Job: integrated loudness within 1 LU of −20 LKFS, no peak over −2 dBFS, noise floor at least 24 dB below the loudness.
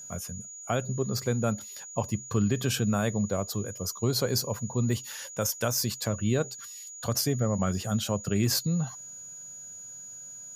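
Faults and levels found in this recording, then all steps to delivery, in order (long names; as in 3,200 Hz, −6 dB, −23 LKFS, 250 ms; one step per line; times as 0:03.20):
interfering tone 6,800 Hz; level of the tone −41 dBFS; integrated loudness −29.0 LKFS; sample peak −14.5 dBFS; target loudness −20.0 LKFS
→ notch filter 6,800 Hz, Q 30
level +9 dB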